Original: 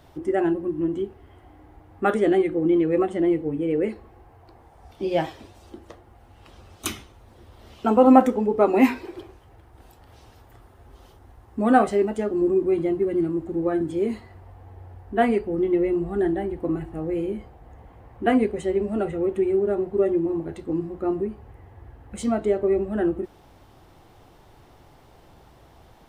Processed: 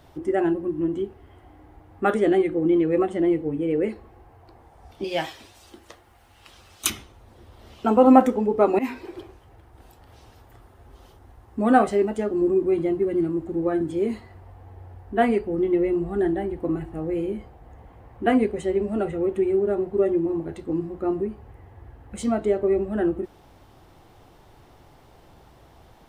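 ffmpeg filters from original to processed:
-filter_complex "[0:a]asettb=1/sr,asplit=3[s0][s1][s2];[s0]atrim=end=5.044[s3];[s1]atrim=start=5.04:end=6.9,asetpts=PTS-STARTPTS,afade=t=in:d=0.004:c=qsin,afade=t=out:st=1.856:d=0.004:c=qsin,tiltshelf=f=1100:g=-7[s4];[s2]atrim=start=6.896[s5];[s3][s4]acrossfade=d=0.004:c1=hsin:c2=qsin[s6];[s6][s5]acrossfade=d=0.004:c1=qsin:c2=hsin,asplit=2[s7][s8];[s7]atrim=end=8.79,asetpts=PTS-STARTPTS,afade=t=out:st=8.786:d=0.004:c=hsin:silence=0.133352[s9];[s8]atrim=start=8.79,asetpts=PTS-STARTPTS,afade=t=in:d=0.41:c=qsin:silence=0.133352[s10];[s9][s10]concat=n=2:v=0:a=1"

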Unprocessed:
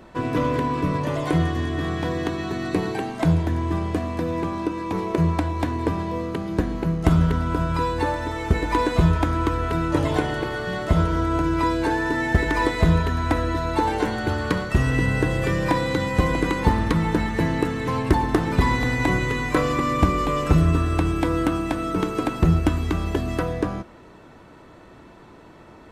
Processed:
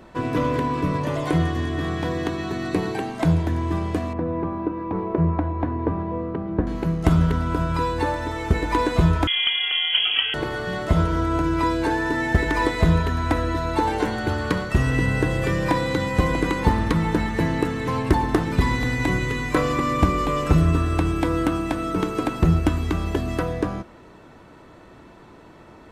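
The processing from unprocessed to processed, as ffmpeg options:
-filter_complex "[0:a]asettb=1/sr,asplit=3[s0][s1][s2];[s0]atrim=end=4.134[s3];[s1]atrim=start=4.13:end=6.67,asetpts=PTS-STARTPTS,afade=t=in:d=0.004:c=qsin,afade=t=out:st=2.536:d=0.004:c=qsin,lowpass=1300[s4];[s2]atrim=start=6.666[s5];[s3][s4]acrossfade=d=0.004:c1=hsin:c2=qsin[s6];[s6][s5]acrossfade=d=0.004:c1=qsin:c2=hsin,asettb=1/sr,asplit=3[s7][s8][s9];[s7]atrim=end=9.274[s10];[s8]atrim=start=9.27:end=10.34,asetpts=PTS-STARTPTS,afade=t=in:d=0.004:c=qsin,afade=t=out:st=1.066:d=0.004:c=qsin,lowpass=f=2900:t=q:w=0.5098,lowpass=f=2900:t=q:w=0.6013,lowpass=f=2900:t=q:w=0.9,lowpass=f=2900:t=q:w=2.563,afreqshift=-3400[s11];[s9]atrim=start=10.336[s12];[s10][s11]acrossfade=d=0.004:c1=hsin:c2=qsin[s13];[s13][s12]acrossfade=d=0.004:c1=qsin:c2=hsin,asettb=1/sr,asplit=3[s14][s15][s16];[s14]atrim=end=18.434[s17];[s15]atrim=start=18.43:end=19.54,asetpts=PTS-STARTPTS,afade=t=in:d=0.004:c=qsin,afade=t=out:st=1.106:d=0.004:c=qsin,equalizer=f=810:t=o:w=1.8:g=-4[s18];[s16]atrim=start=19.536[s19];[s17][s18]acrossfade=d=0.004:c1=hsin:c2=qsin[s20];[s20][s19]acrossfade=d=0.004:c1=qsin:c2=hsin"

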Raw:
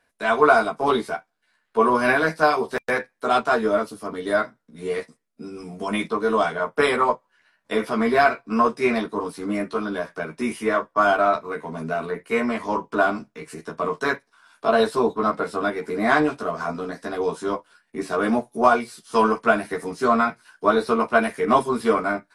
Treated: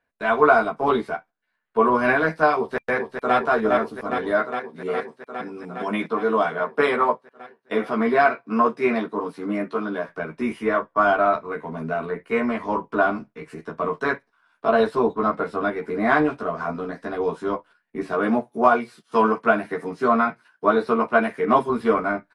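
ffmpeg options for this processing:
-filter_complex "[0:a]asplit=2[s0][s1];[s1]afade=t=in:st=2.58:d=0.01,afade=t=out:st=3.36:d=0.01,aecho=0:1:410|820|1230|1640|2050|2460|2870|3280|3690|4100|4510|4920:0.562341|0.449873|0.359898|0.287919|0.230335|0.184268|0.147414|0.117932|0.0943452|0.0754762|0.0603809|0.0483048[s2];[s0][s2]amix=inputs=2:normalize=0,asettb=1/sr,asplit=3[s3][s4][s5];[s3]atrim=end=4.314[s6];[s4]atrim=start=4.31:end=10.09,asetpts=PTS-STARTPTS,afade=t=in:d=0.004:c=qsin,afade=t=out:st=5.776:d=0.004:c=qsin,highpass=150[s7];[s5]atrim=start=10.086[s8];[s6][s7]acrossfade=d=0.004:c1=hsin:c2=qsin[s9];[s9][s8]acrossfade=d=0.004:c1=qsin:c2=hsin,asettb=1/sr,asplit=3[s10][s11][s12];[s10]atrim=end=18.144[s13];[s11]atrim=start=18.14:end=21.7,asetpts=PTS-STARTPTS,afade=t=in:d=0.004:c=qsin,afade=t=out:st=3.556:d=0.004:c=qsin,highpass=110[s14];[s12]atrim=start=21.696[s15];[s13][s14]acrossfade=d=0.004:c1=hsin:c2=qsin[s16];[s16][s15]acrossfade=d=0.004:c1=qsin:c2=hsin,agate=range=0.398:threshold=0.00631:ratio=16:detection=peak,bass=f=250:g=1,treble=f=4000:g=-14"

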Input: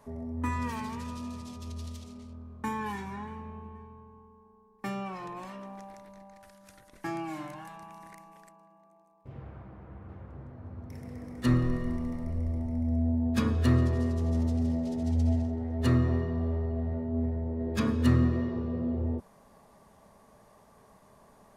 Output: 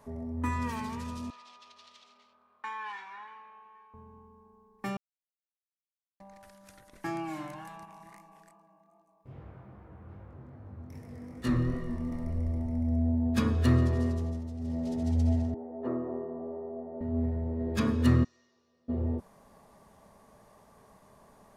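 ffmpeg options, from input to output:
-filter_complex "[0:a]asettb=1/sr,asplit=3[s0][s1][s2];[s0]atrim=end=1.304[s3];[s1]atrim=start=1.3:end=3.94,asetpts=PTS-STARTPTS,afade=t=in:d=0.004:c=qsin,afade=t=out:st=2.636:d=0.004:c=qsin,asuperpass=centerf=2000:order=4:qfactor=0.62[s4];[s2]atrim=start=3.936[s5];[s3][s4]acrossfade=d=0.004:c1=hsin:c2=qsin[s6];[s6][s5]acrossfade=d=0.004:c1=qsin:c2=hsin,asettb=1/sr,asplit=3[s7][s8][s9];[s7]atrim=end=7.854[s10];[s8]atrim=start=7.85:end=12.12,asetpts=PTS-STARTPTS,afade=t=in:d=0.004:c=qsin,afade=t=out:st=4.266:d=0.004:c=qsin,flanger=delay=18.5:depth=6.3:speed=2.5[s11];[s9]atrim=start=12.116[s12];[s10][s11]acrossfade=d=0.004:c1=hsin:c2=qsin[s13];[s13][s12]acrossfade=d=0.004:c1=qsin:c2=hsin,asettb=1/sr,asplit=3[s14][s15][s16];[s14]atrim=end=15.544[s17];[s15]atrim=start=15.54:end=17.01,asetpts=PTS-STARTPTS,afade=t=in:d=0.004:c=qsin,afade=t=out:st=1.466:d=0.004:c=qsin,asuperpass=centerf=540:order=4:qfactor=0.85[s18];[s16]atrim=start=17.006[s19];[s17][s18]acrossfade=d=0.004:c1=hsin:c2=qsin[s20];[s20][s19]acrossfade=d=0.004:c1=qsin:c2=hsin,asplit=3[s21][s22][s23];[s21]afade=t=out:st=18.23:d=0.02[s24];[s22]bandpass=f=6000:t=q:w=3.9,afade=t=in:st=18.23:d=0.02,afade=t=out:st=18.88:d=0.02[s25];[s23]afade=t=in:st=18.88:d=0.02[s26];[s24][s25][s26]amix=inputs=3:normalize=0,asplit=5[s27][s28][s29][s30][s31];[s27]atrim=end=4.97,asetpts=PTS-STARTPTS,afade=t=out:st=4.966:d=0.004:c=hsin[s32];[s28]atrim=start=4.97:end=6.2,asetpts=PTS-STARTPTS,volume=0[s33];[s29]atrim=start=6.2:end=14.41,asetpts=PTS-STARTPTS,afade=t=in:d=0.004:c=hsin,afade=t=out:st=7.89:d=0.32:silence=0.298538[s34];[s30]atrim=start=14.41:end=14.58,asetpts=PTS-STARTPTS,volume=0.299[s35];[s31]atrim=start=14.58,asetpts=PTS-STARTPTS,afade=t=in:d=0.32:silence=0.298538[s36];[s32][s33][s34][s35][s36]concat=n=5:v=0:a=1"

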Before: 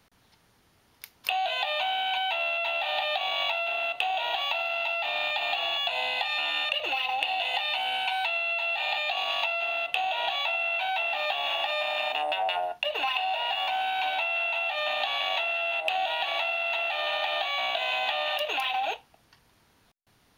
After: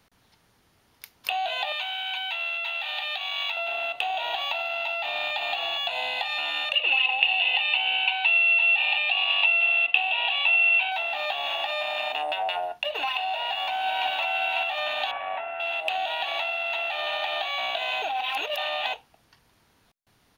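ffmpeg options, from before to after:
-filter_complex "[0:a]asettb=1/sr,asplit=3[s0][s1][s2];[s0]atrim=end=1.724[s3];[s1]atrim=start=1.72:end=3.57,asetpts=PTS-STARTPTS,afade=t=in:d=0.004:c=qsin,afade=t=out:st=1.846:d=0.004:c=qsin,highpass=1200[s4];[s2]atrim=start=3.566[s5];[s3][s4]acrossfade=d=0.004:c1=hsin:c2=qsin[s6];[s6][s5]acrossfade=d=0.004:c1=qsin:c2=hsin,asettb=1/sr,asplit=3[s7][s8][s9];[s7]atrim=end=6.754[s10];[s8]atrim=start=6.75:end=10.92,asetpts=PTS-STARTPTS,afade=t=in:d=0.004:c=qsin,afade=t=out:st=4.166:d=0.004:c=qsin,highpass=f=220:w=0.5412,highpass=f=220:w=1.3066,equalizer=f=330:t=q:w=4:g=-8,equalizer=f=640:t=q:w=4:g=-6,equalizer=f=1400:t=q:w=4:g=-4,equalizer=f=2700:t=q:w=4:g=10,lowpass=f=3900:w=0.5412,lowpass=f=3900:w=1.3066[s11];[s9]atrim=start=10.916[s12];[s10][s11]acrossfade=d=0.004:c1=hsin:c2=qsin[s13];[s13][s12]acrossfade=d=0.004:c1=qsin:c2=hsin,asplit=2[s14][s15];[s15]afade=t=in:st=13.27:d=0.01,afade=t=out:st=14.08:d=0.01,aecho=0:1:550|1100|1650|2200|2750|3300|3850:0.707946|0.353973|0.176986|0.0884932|0.0442466|0.0221233|0.0110617[s16];[s14][s16]amix=inputs=2:normalize=0,asettb=1/sr,asplit=3[s17][s18][s19];[s17]atrim=end=15.114[s20];[s18]atrim=start=15.11:end=15.6,asetpts=PTS-STARTPTS,afade=t=in:d=0.004:c=qsin,afade=t=out:st=0.486:d=0.004:c=qsin,lowpass=f=2000:w=0.5412,lowpass=f=2000:w=1.3066[s21];[s19]atrim=start=15.596[s22];[s20][s21]acrossfade=d=0.004:c1=hsin:c2=qsin[s23];[s23][s22]acrossfade=d=0.004:c1=qsin:c2=hsin,asplit=3[s24][s25][s26];[s24]atrim=end=18.022[s27];[s25]atrim=start=18.018:end=18.932,asetpts=PTS-STARTPTS,areverse[s28];[s26]atrim=start=18.928[s29];[s27][s28]acrossfade=d=0.004:c1=hsin:c2=hsin[s30];[s30][s29]acrossfade=d=0.004:c1=hsin:c2=hsin"

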